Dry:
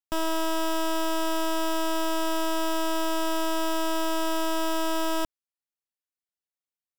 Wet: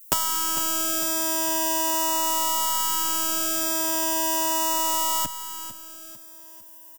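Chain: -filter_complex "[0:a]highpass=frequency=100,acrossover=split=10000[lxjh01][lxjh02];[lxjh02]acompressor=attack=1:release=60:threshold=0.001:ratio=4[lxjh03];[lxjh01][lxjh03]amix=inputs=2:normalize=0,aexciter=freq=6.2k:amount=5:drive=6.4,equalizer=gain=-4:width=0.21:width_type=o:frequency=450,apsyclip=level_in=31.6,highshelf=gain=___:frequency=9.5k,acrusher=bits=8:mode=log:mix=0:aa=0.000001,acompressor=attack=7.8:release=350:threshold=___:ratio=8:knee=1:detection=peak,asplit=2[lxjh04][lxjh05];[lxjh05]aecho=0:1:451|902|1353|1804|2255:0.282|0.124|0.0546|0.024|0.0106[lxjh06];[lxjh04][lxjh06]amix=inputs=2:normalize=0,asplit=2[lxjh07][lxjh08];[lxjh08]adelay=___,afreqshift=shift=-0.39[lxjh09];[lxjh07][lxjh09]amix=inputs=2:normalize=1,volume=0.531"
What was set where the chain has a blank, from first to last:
11, 0.282, 7.9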